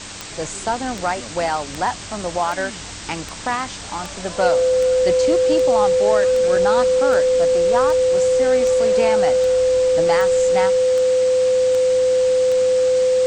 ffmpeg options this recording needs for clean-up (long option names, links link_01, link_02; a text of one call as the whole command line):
ffmpeg -i in.wav -af "adeclick=threshold=4,bandreject=frequency=99:width_type=h:width=4,bandreject=frequency=198:width_type=h:width=4,bandreject=frequency=297:width_type=h:width=4,bandreject=frequency=510:width=30,afwtdn=0.028" out.wav